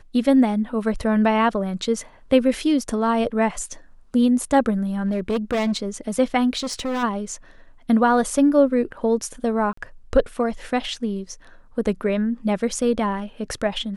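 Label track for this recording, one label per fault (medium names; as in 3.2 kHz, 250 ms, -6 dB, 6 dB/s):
5.030000	5.820000	clipped -18 dBFS
6.580000	7.040000	clipped -22 dBFS
9.730000	9.770000	dropout 44 ms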